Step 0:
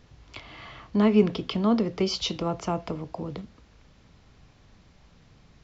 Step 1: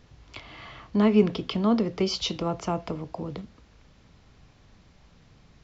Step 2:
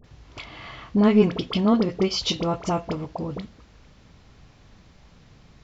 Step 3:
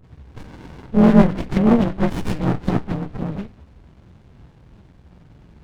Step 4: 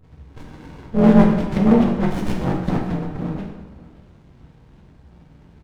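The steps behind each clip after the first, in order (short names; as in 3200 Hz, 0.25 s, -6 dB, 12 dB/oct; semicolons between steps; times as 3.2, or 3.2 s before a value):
nothing audible
in parallel at -5 dB: soft clip -16.5 dBFS, distortion -14 dB; on the sum: dispersion highs, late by 43 ms, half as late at 1100 Hz
inharmonic rescaling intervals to 85%; running maximum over 65 samples; gain +8.5 dB
echo 0.565 s -20 dB; plate-style reverb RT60 1.1 s, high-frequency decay 0.75×, DRR 1 dB; gain -3 dB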